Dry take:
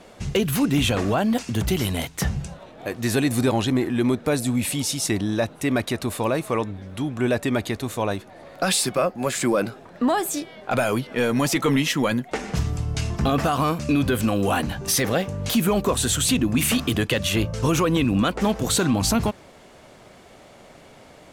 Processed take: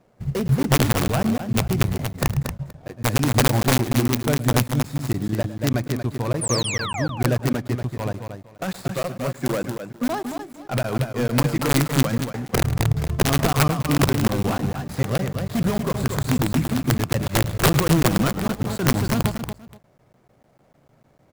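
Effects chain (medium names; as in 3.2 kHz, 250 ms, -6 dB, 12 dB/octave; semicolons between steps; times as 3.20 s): median filter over 15 samples; in parallel at -7 dB: integer overflow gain 14.5 dB; on the sum: peaking EQ 130 Hz +10.5 dB 0.71 oct; integer overflow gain 7.5 dB; painted sound fall, 6.41–7.07 s, 480–10000 Hz -22 dBFS; treble shelf 6.7 kHz +5.5 dB; on a send: multi-tap echo 107/232/474 ms -13.5/-5/-14.5 dB; on the sum: crackling interface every 0.15 s, samples 512, zero, from 0.48 s; upward expansion 1.5:1, over -35 dBFS; trim -3.5 dB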